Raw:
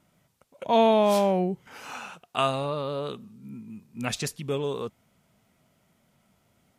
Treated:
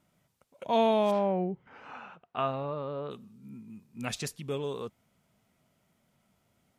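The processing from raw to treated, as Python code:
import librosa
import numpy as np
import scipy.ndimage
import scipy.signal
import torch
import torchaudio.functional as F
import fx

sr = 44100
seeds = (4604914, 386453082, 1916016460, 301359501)

y = fx.lowpass(x, sr, hz=2000.0, slope=12, at=(1.1, 3.1), fade=0.02)
y = F.gain(torch.from_numpy(y), -5.0).numpy()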